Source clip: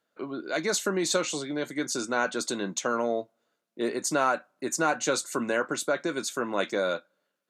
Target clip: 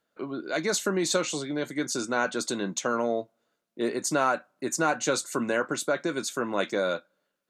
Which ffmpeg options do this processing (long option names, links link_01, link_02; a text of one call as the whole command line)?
ffmpeg -i in.wav -af "lowshelf=frequency=120:gain=7.5" out.wav